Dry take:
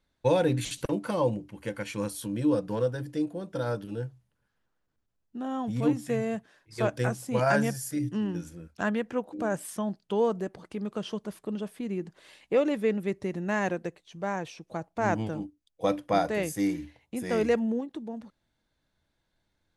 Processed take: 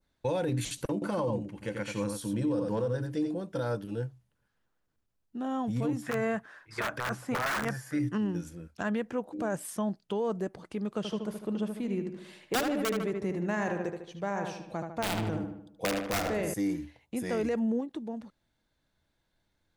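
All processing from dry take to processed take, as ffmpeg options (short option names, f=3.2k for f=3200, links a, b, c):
-filter_complex "[0:a]asettb=1/sr,asplit=3[a][b][c];[a]atrim=end=0.934[d];[b]atrim=start=0.93:end=3.41,asetpts=PTS-STARTPTS,afade=t=in:d=0.004:c=qsin,afade=t=out:st=2.476:d=0.004:c=qsin,lowpass=9.6k,aecho=1:1:88:0.473,atrim=end_sample=109368[e];[c]atrim=start=3.406[f];[d][e]acrossfade=d=0.004:c1=hsin:c2=qsin[g];[g][f]acrossfade=d=0.004:c1=qsin:c2=hsin,asettb=1/sr,asplit=3[h][i][j];[h]atrim=end=6.024[k];[i]atrim=start=6.02:end=8.18,asetpts=PTS-STARTPTS,afade=t=in:d=0.004:c=qsin,afade=t=out:st=2.156:d=0.004:c=qsin,acrossover=split=3900[l][m];[m]acompressor=threshold=-51dB:ratio=4:attack=1:release=60[n];[l][n]amix=inputs=2:normalize=0,aeval=exprs='(mod(8.91*val(0)+1,2)-1)/8.91':c=same,equalizer=f=1.4k:w=0.81:g=14.5[o];[j]atrim=start=8.176[p];[k][o]acrossfade=d=0.004:c1=hsin:c2=qsin[q];[q][p]acrossfade=d=0.004:c1=qsin:c2=hsin,asettb=1/sr,asplit=3[r][s][t];[r]atrim=end=10.974[u];[s]atrim=start=10.97:end=16.54,asetpts=PTS-STARTPTS,afade=t=in:d=0.004:c=qsin,afade=t=out:st=5.566:d=0.004:c=qsin,aeval=exprs='(mod(7.5*val(0)+1,2)-1)/7.5':c=same,asplit=2[v][w];[w]adelay=75,lowpass=f=3.2k:p=1,volume=-6dB,asplit=2[x][y];[y]adelay=75,lowpass=f=3.2k:p=1,volume=0.51,asplit=2[z][aa];[aa]adelay=75,lowpass=f=3.2k:p=1,volume=0.51,asplit=2[ab][ac];[ac]adelay=75,lowpass=f=3.2k:p=1,volume=0.51,asplit=2[ad][ae];[ae]adelay=75,lowpass=f=3.2k:p=1,volume=0.51,asplit=2[af][ag];[ag]adelay=75,lowpass=f=3.2k:p=1,volume=0.51[ah];[v][x][z][ab][ad][af][ah]amix=inputs=7:normalize=0,atrim=end_sample=245637[ai];[t]atrim=start=16.536[aj];[u][ai]acrossfade=d=0.004:c1=hsin:c2=qsin[ak];[ak][aj]acrossfade=d=0.004:c1=qsin:c2=hsin,adynamicequalizer=threshold=0.00355:dfrequency=3000:dqfactor=0.91:tfrequency=3000:tqfactor=0.91:attack=5:release=100:ratio=0.375:range=2.5:mode=cutabove:tftype=bell,alimiter=limit=-22.5dB:level=0:latency=1:release=33"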